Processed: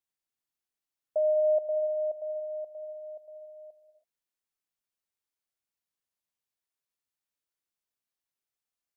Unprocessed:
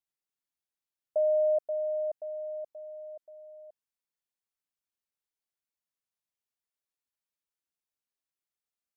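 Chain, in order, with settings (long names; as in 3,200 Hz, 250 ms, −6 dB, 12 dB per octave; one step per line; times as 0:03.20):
reverb whose tail is shaped and stops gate 350 ms flat, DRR 8 dB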